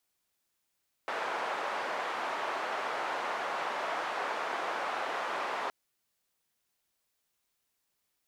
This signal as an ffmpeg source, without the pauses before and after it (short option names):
-f lavfi -i "anoisesrc=c=white:d=4.62:r=44100:seed=1,highpass=f=700,lowpass=f=1000,volume=-12.7dB"